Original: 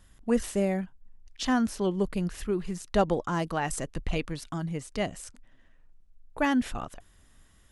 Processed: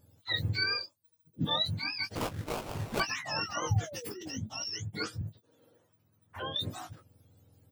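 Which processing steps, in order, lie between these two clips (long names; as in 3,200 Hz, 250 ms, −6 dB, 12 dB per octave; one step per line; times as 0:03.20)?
frequency axis turned over on the octave scale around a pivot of 950 Hz
dynamic equaliser 6,900 Hz, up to +6 dB, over −47 dBFS, Q 0.86
0:03.92–0:04.35: compressor whose output falls as the input rises −38 dBFS, ratio −0.5
0:02.48–0:04.48: sound drawn into the spectrogram fall 210–7,900 Hz −41 dBFS
0:02.15–0:03.00: sample-rate reduction 1,800 Hz, jitter 20%
double-tracking delay 19 ms −7.5 dB
0:05.21–0:06.56: multiband upward and downward compressor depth 70%
level −4.5 dB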